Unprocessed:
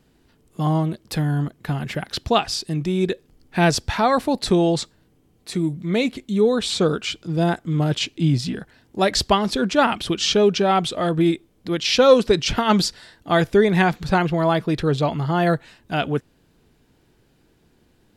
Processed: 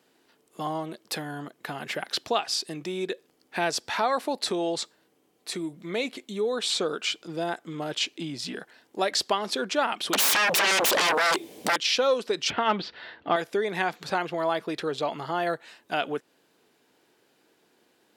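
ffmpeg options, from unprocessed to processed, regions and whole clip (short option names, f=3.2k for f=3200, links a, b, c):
-filter_complex "[0:a]asettb=1/sr,asplit=3[a][b][c];[a]atrim=end=10.134[d];[b]atrim=start=10.13:end=11.76,asetpts=PTS-STARTPTS,afade=t=in:d=0.004:c=qsin,afade=t=out:st=1.626:d=0.004:c=qsin,equalizer=f=1.3k:t=o:w=0.62:g=-13,acompressor=threshold=-20dB:ratio=12:attack=3.2:release=140:knee=1:detection=peak,aeval=exprs='0.224*sin(PI/2*8.91*val(0)/0.224)':c=same[e];[c]atrim=start=11.756[f];[d][e]acrossfade=d=0.004:c1=hsin:c2=qsin[g];[g][f]acrossfade=d=0.004:c1=qsin:c2=hsin,asettb=1/sr,asplit=3[h][i][j];[h]atrim=end=12.504[k];[i]atrim=start=12.5:end=13.36,asetpts=PTS-STARTPTS,afade=t=in:d=0.004:c=qsin,afade=t=out:st=0.856:d=0.004:c=qsin,lowpass=f=3.3k:w=0.5412,lowpass=f=3.3k:w=1.3066,acontrast=47,equalizer=f=74:t=o:w=1.4:g=12.5[l];[j]atrim=start=13.356[m];[k][l]acrossfade=d=0.004:c1=hsin:c2=qsin[n];[n][m]acrossfade=d=0.004:c1=qsin:c2=hsin,acompressor=threshold=-23dB:ratio=2.5,highpass=400"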